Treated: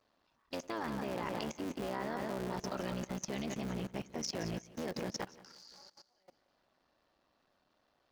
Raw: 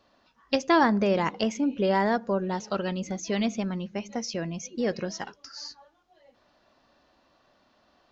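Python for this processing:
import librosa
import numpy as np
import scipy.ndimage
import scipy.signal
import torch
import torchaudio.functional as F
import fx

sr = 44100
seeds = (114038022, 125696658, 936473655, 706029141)

y = fx.cycle_switch(x, sr, every=3, mode='muted')
y = fx.echo_feedback(y, sr, ms=175, feedback_pct=43, wet_db=-10)
y = fx.level_steps(y, sr, step_db=19)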